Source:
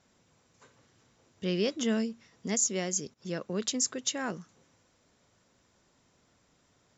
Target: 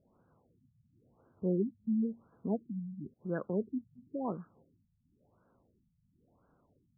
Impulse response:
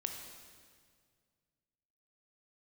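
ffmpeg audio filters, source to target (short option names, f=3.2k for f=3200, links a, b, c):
-af "afftfilt=real='re*lt(b*sr/1024,200*pow(1700/200,0.5+0.5*sin(2*PI*0.96*pts/sr)))':imag='im*lt(b*sr/1024,200*pow(1700/200,0.5+0.5*sin(2*PI*0.96*pts/sr)))':win_size=1024:overlap=0.75"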